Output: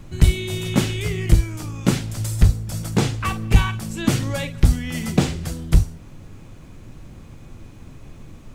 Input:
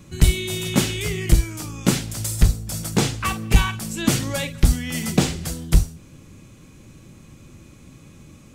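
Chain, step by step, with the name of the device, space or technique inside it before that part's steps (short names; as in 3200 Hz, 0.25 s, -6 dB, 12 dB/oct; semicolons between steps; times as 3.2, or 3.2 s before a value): car interior (bell 100 Hz +5 dB 0.65 oct; high shelf 4100 Hz -7 dB; brown noise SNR 20 dB)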